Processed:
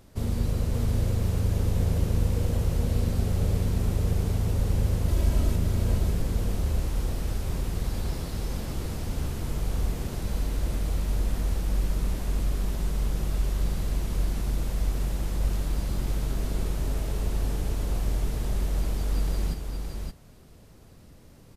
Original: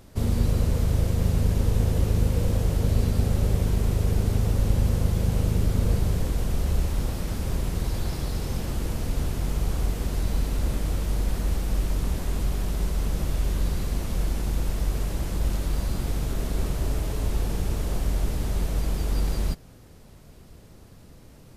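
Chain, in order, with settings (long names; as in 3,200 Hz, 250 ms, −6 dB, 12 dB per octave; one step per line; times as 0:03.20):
0:05.08–0:05.56: comb filter 3.1 ms, depth 97%
single-tap delay 569 ms −4.5 dB
level −4 dB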